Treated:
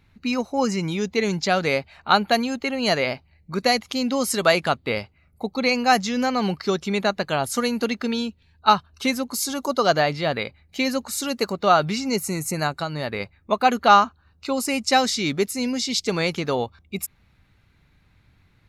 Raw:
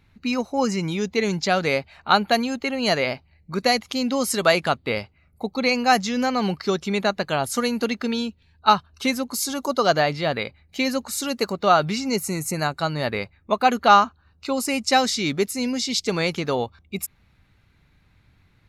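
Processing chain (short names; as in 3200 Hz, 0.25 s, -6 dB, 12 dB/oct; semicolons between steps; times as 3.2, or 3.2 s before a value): 12.78–13.2 compressor, threshold -23 dBFS, peak gain reduction 5.5 dB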